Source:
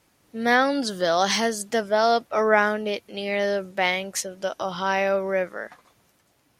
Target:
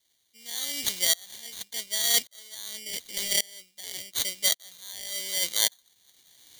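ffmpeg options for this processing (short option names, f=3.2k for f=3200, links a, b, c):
-af "highshelf=f=4.8k:g=10.5,acrusher=samples=17:mix=1:aa=0.000001,areverse,acompressor=threshold=-35dB:ratio=6,areverse,aexciter=amount=11.7:drive=7.4:freq=2.1k,aeval=exprs='val(0)*pow(10,-29*if(lt(mod(-0.88*n/s,1),2*abs(-0.88)/1000),1-mod(-0.88*n/s,1)/(2*abs(-0.88)/1000),(mod(-0.88*n/s,1)-2*abs(-0.88)/1000)/(1-2*abs(-0.88)/1000))/20)':c=same"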